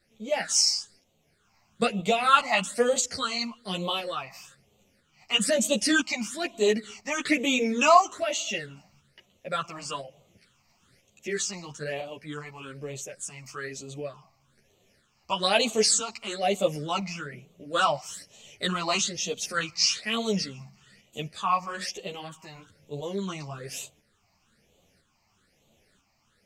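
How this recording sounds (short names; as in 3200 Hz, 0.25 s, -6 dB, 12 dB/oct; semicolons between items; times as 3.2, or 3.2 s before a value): phasing stages 8, 1.1 Hz, lowest notch 450–1600 Hz; tremolo saw up 1 Hz, depth 45%; a shimmering, thickened sound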